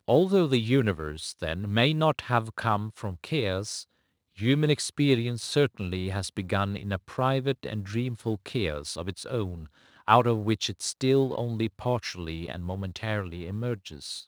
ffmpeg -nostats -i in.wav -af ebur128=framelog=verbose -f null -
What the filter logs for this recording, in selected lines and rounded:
Integrated loudness:
  I:         -28.0 LUFS
  Threshold: -38.1 LUFS
Loudness range:
  LRA:         3.2 LU
  Threshold: -48.3 LUFS
  LRA low:   -30.3 LUFS
  LRA high:  -27.2 LUFS